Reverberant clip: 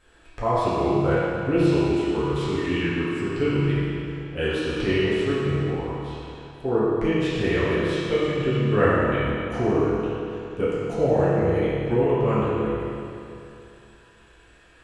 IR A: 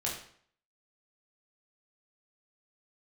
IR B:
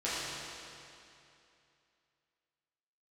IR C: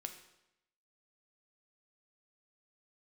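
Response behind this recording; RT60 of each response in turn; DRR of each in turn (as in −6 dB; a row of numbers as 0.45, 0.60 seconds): B; 0.55, 2.7, 0.85 seconds; −4.0, −11.5, 5.5 decibels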